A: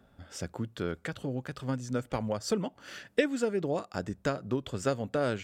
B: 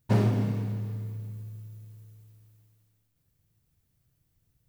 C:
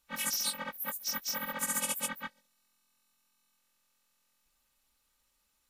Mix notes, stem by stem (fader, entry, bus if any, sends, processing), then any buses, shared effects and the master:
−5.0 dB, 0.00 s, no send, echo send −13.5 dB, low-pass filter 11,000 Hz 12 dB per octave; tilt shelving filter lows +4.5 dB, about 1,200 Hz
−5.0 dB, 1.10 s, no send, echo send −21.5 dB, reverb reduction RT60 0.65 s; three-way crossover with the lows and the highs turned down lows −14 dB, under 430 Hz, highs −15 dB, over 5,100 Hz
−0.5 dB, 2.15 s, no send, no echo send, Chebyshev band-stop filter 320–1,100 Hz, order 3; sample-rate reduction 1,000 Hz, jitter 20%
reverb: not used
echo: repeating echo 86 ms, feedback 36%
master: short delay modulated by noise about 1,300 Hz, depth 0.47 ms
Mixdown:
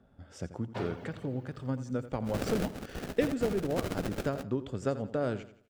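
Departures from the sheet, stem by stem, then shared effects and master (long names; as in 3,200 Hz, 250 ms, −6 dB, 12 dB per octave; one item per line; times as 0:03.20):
stem B: entry 1.10 s → 0.65 s
master: missing short delay modulated by noise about 1,300 Hz, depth 0.47 ms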